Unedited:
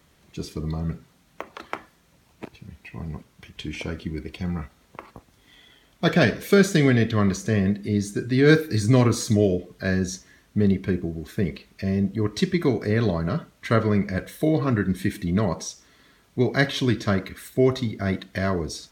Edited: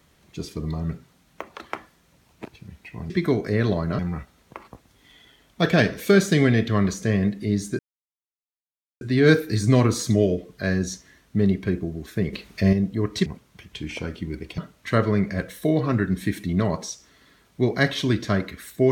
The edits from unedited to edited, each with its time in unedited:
3.1–4.42 swap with 12.47–13.36
8.22 insert silence 1.22 s
11.54–11.94 gain +7 dB

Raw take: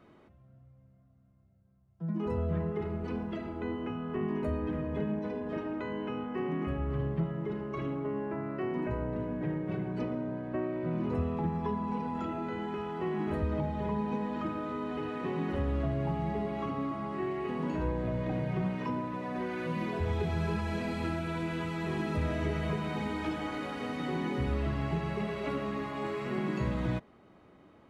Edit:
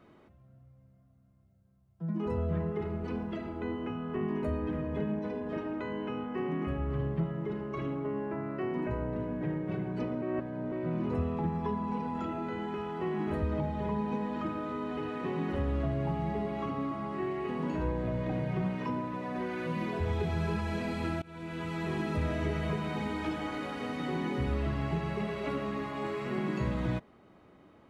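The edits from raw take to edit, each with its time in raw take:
10.22–10.72 reverse
21.22–21.75 fade in, from -23.5 dB

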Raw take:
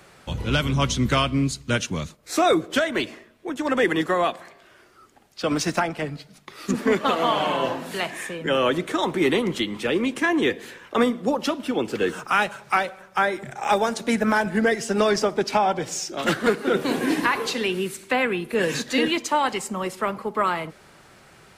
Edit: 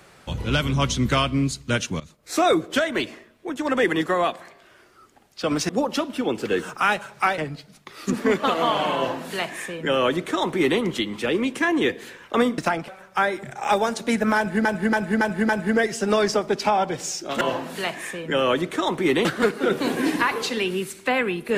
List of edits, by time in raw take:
2–2.43 fade in equal-power, from -19 dB
5.69–5.99 swap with 11.19–12.88
7.57–9.41 copy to 16.29
14.37–14.65 loop, 5 plays

